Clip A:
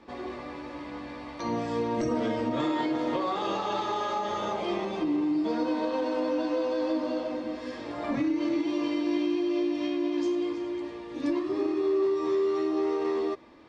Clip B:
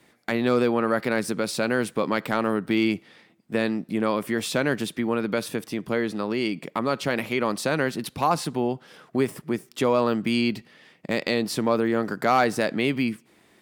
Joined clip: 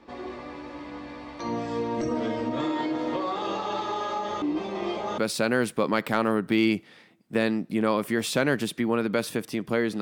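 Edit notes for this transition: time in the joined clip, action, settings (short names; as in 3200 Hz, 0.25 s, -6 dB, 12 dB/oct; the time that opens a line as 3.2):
clip A
4.42–5.18 reverse
5.18 switch to clip B from 1.37 s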